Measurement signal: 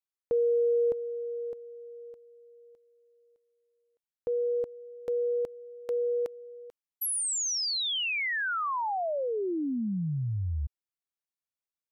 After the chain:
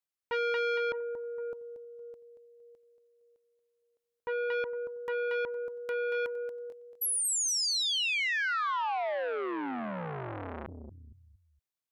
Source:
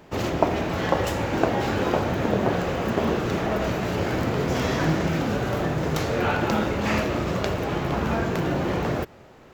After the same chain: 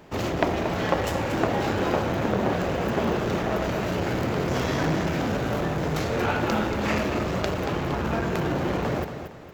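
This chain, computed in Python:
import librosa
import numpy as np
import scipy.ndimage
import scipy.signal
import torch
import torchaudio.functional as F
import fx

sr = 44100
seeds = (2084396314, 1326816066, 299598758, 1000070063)

y = fx.echo_feedback(x, sr, ms=231, feedback_pct=34, wet_db=-10.0)
y = fx.transformer_sat(y, sr, knee_hz=1300.0)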